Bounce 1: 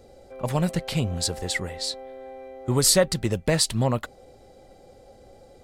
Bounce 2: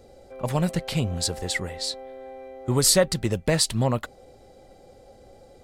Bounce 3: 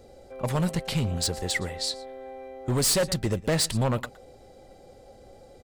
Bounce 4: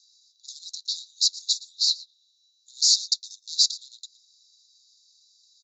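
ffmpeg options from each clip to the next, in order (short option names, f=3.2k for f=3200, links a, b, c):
-af anull
-af "aecho=1:1:117:0.0891,volume=20dB,asoftclip=hard,volume=-20dB"
-af "asuperpass=centerf=5200:order=20:qfactor=1.5,volume=9dB"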